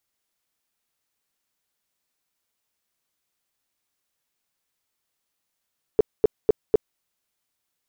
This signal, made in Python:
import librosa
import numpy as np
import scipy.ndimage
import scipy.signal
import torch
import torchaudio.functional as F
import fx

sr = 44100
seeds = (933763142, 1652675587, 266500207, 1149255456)

y = fx.tone_burst(sr, hz=431.0, cycles=7, every_s=0.25, bursts=4, level_db=-10.5)